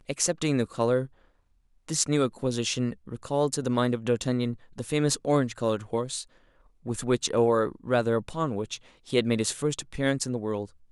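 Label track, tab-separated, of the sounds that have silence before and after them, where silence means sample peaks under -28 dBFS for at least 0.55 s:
1.890000	6.210000	sound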